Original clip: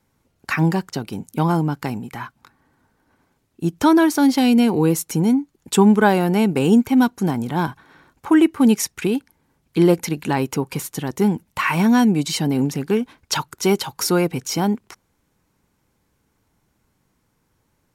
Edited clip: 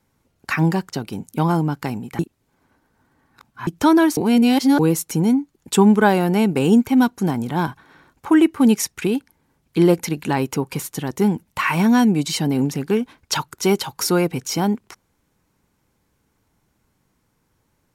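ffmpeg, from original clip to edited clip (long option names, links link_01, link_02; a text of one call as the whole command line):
ffmpeg -i in.wav -filter_complex "[0:a]asplit=5[link_01][link_02][link_03][link_04][link_05];[link_01]atrim=end=2.192[link_06];[link_02]atrim=start=2.188:end=3.672,asetpts=PTS-STARTPTS,areverse[link_07];[link_03]atrim=start=3.668:end=4.172[link_08];[link_04]atrim=start=4.168:end=4.792,asetpts=PTS-STARTPTS,areverse[link_09];[link_05]atrim=start=4.788[link_10];[link_06][link_07]acrossfade=duration=0.004:curve1=hsin:curve2=hsin[link_11];[link_11][link_08]acrossfade=duration=0.004:curve1=hsin:curve2=hsin[link_12];[link_12][link_09]acrossfade=duration=0.004:curve1=hsin:curve2=hsin[link_13];[link_13][link_10]acrossfade=duration=0.004:curve1=hsin:curve2=hsin" out.wav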